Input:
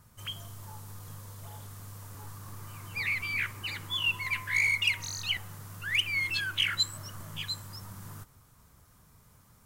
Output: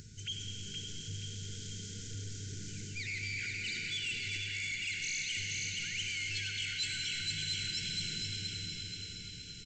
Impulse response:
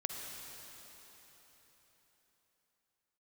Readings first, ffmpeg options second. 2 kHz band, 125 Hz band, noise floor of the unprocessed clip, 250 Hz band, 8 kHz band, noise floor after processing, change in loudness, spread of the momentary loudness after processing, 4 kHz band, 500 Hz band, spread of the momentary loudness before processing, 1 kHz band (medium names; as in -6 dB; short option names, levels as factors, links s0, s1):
-7.0 dB, -1.0 dB, -60 dBFS, +1.5 dB, +3.5 dB, -46 dBFS, -7.0 dB, 9 LU, -3.0 dB, -2.0 dB, 19 LU, under -15 dB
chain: -filter_complex "[0:a]aecho=1:1:474|948|1422|1896|2370:0.422|0.194|0.0892|0.041|0.0189,areverse,acompressor=threshold=0.0126:ratio=5,areverse,equalizer=f=1700:t=o:w=0.36:g=-10[s0];[1:a]atrim=start_sample=2205,asetrate=31311,aresample=44100[s1];[s0][s1]afir=irnorm=-1:irlink=0,aresample=16000,asoftclip=type=tanh:threshold=0.0158,aresample=44100,afftfilt=real='re*(1-between(b*sr/4096,480,1400))':imag='im*(1-between(b*sr/4096,480,1400))':win_size=4096:overlap=0.75,acompressor=mode=upward:threshold=0.00398:ratio=2.5,bass=f=250:g=0,treble=f=4000:g=8,volume=1.26"